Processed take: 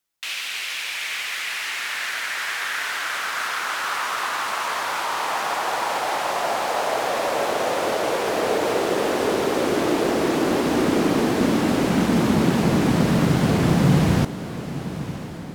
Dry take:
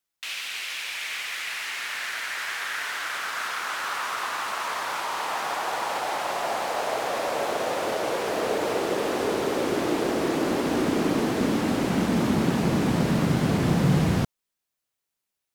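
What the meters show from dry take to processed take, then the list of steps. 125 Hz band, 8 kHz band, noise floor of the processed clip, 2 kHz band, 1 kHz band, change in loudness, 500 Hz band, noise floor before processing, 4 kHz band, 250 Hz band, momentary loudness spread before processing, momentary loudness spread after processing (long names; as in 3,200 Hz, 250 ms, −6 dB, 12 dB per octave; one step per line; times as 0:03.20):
+4.0 dB, +4.5 dB, −31 dBFS, +4.5 dB, +4.5 dB, +4.0 dB, +4.5 dB, −84 dBFS, +4.5 dB, +4.5 dB, 7 LU, 7 LU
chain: feedback delay with all-pass diffusion 1,032 ms, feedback 52%, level −13 dB
level +4 dB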